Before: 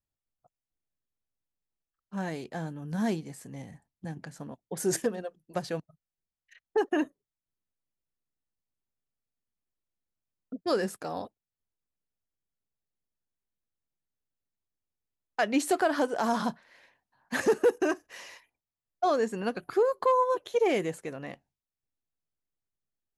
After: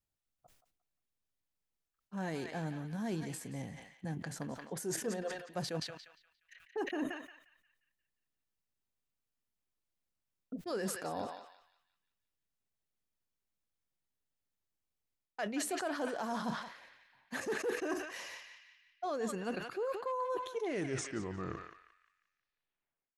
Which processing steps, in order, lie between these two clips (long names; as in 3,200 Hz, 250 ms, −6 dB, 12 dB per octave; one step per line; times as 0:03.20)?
turntable brake at the end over 2.69 s
reversed playback
downward compressor 6 to 1, threshold −35 dBFS, peak gain reduction 15.5 dB
reversed playback
feedback echo with a band-pass in the loop 176 ms, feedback 50%, band-pass 2,500 Hz, level −6 dB
level that may fall only so fast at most 77 dB per second